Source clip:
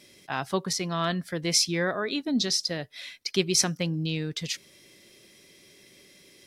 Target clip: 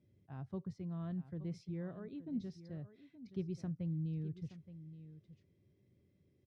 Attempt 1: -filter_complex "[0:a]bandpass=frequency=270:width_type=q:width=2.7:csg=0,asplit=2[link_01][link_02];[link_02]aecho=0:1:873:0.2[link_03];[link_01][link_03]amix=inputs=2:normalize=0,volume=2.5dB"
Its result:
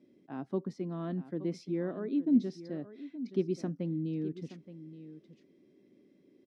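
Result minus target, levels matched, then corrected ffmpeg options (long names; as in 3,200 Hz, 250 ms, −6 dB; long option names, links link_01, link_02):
125 Hz band −7.5 dB
-filter_complex "[0:a]bandpass=frequency=94:width_type=q:width=2.7:csg=0,asplit=2[link_01][link_02];[link_02]aecho=0:1:873:0.2[link_03];[link_01][link_03]amix=inputs=2:normalize=0,volume=2.5dB"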